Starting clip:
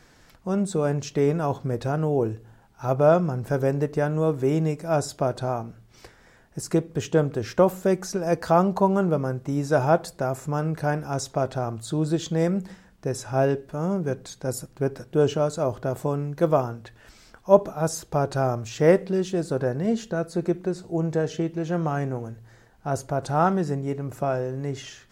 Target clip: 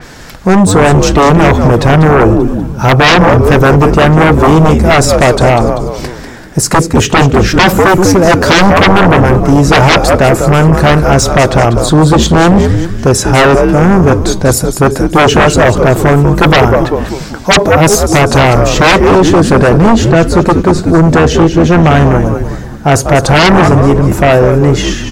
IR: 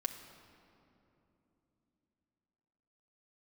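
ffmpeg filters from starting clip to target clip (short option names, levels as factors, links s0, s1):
-filter_complex "[0:a]asplit=6[s0][s1][s2][s3][s4][s5];[s1]adelay=194,afreqshift=-90,volume=0.355[s6];[s2]adelay=388,afreqshift=-180,volume=0.164[s7];[s3]adelay=582,afreqshift=-270,volume=0.075[s8];[s4]adelay=776,afreqshift=-360,volume=0.0347[s9];[s5]adelay=970,afreqshift=-450,volume=0.0158[s10];[s0][s6][s7][s8][s9][s10]amix=inputs=6:normalize=0,aeval=exprs='0.75*sin(PI/2*8.91*val(0)/0.75)':c=same,adynamicequalizer=threshold=0.0501:dfrequency=4600:dqfactor=0.7:tfrequency=4600:tqfactor=0.7:attack=5:release=100:ratio=0.375:range=1.5:mode=cutabove:tftype=highshelf,volume=1.12"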